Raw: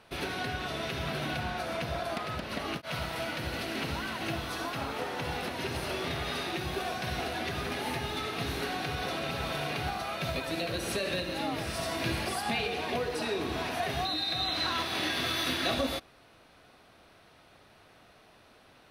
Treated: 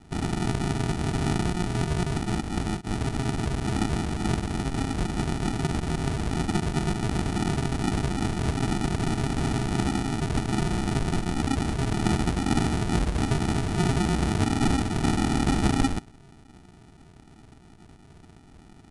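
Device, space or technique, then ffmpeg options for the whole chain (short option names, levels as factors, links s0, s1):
crushed at another speed: -af "asetrate=88200,aresample=44100,acrusher=samples=41:mix=1:aa=0.000001,asetrate=22050,aresample=44100,volume=2.51"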